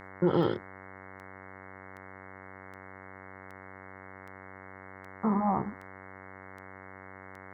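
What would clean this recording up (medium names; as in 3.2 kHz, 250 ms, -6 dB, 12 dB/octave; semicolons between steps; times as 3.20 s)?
de-click; de-hum 95 Hz, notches 23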